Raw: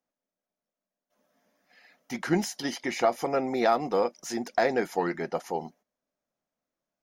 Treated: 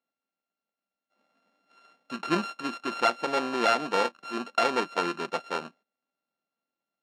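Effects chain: sorted samples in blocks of 32 samples; band-pass 210–4400 Hz

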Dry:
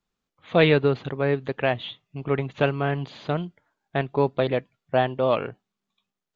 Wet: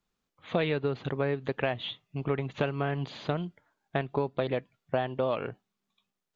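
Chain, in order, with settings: compression 6:1, threshold -25 dBFS, peak gain reduction 12.5 dB

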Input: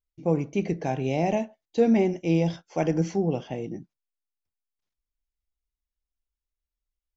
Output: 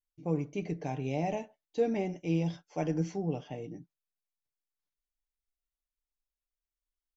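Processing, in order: comb 6.8 ms, depth 46%; trim -8.5 dB

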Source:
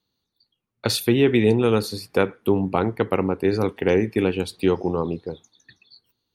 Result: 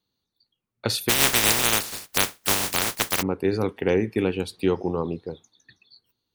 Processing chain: 1.08–3.21 s: spectral contrast reduction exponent 0.12; trim -2.5 dB

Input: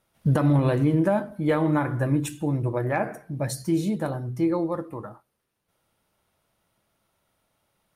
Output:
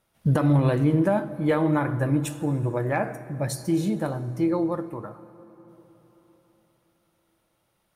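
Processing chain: plate-style reverb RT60 4.2 s, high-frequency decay 0.6×, DRR 14.5 dB

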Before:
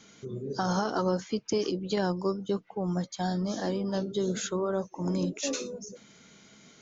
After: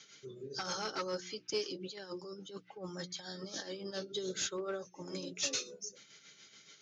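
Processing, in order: tilt EQ +2.5 dB/octave; hum notches 60/120/180/240/300/360 Hz; 1.63–3.91 s: compressor with a negative ratio -37 dBFS, ratio -1; tremolo 7 Hz, depth 56%; one-sided clip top -28 dBFS; cabinet simulation 110–6100 Hz, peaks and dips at 200 Hz -7 dB, 310 Hz -4 dB, 680 Hz -9 dB, 990 Hz -10 dB; comb of notches 240 Hz

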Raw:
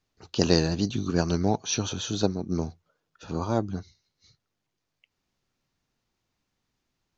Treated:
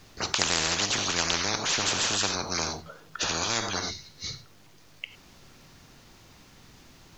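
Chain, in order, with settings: gated-style reverb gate 120 ms flat, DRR 11.5 dB; spectrum-flattening compressor 10:1

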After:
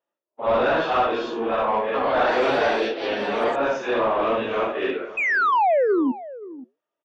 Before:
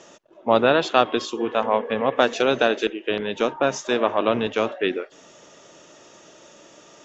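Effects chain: phase randomisation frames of 200 ms; hum notches 60/120/180/240/300/360/420/480/540/600 Hz; gate -42 dBFS, range -38 dB; 5.17–6.12 s: painted sound fall 240–2600 Hz -18 dBFS; flange 0.93 Hz, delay 1.9 ms, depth 8.6 ms, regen -85%; overdrive pedal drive 17 dB, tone 1.5 kHz, clips at -10 dBFS; distance through air 140 m; echo from a far wall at 90 m, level -17 dB; 1.72–3.76 s: ever faster or slower copies 218 ms, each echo +4 st, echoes 2, each echo -6 dB

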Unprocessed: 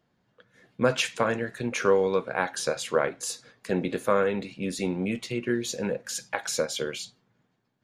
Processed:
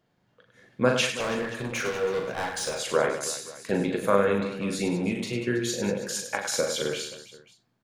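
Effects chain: 1.12–2.75 s: hard clipper -27 dBFS, distortion -8 dB; reverse bouncing-ball echo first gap 40 ms, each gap 1.5×, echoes 5; endings held to a fixed fall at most 160 dB/s

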